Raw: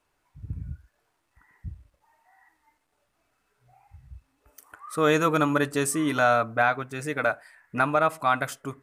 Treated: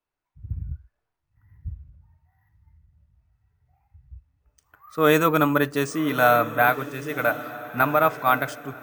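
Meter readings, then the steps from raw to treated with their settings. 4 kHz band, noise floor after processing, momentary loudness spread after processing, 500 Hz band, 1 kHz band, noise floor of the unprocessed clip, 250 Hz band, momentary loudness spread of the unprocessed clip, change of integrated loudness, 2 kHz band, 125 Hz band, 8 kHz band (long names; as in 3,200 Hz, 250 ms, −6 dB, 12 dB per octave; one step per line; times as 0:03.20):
+2.0 dB, −81 dBFS, 20 LU, +3.0 dB, +3.0 dB, −74 dBFS, +2.5 dB, 18 LU, +3.0 dB, +3.0 dB, +2.5 dB, −5.0 dB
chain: bad sample-rate conversion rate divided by 3×, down filtered, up hold
feedback delay with all-pass diffusion 1,175 ms, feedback 41%, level −12 dB
multiband upward and downward expander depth 40%
level +2 dB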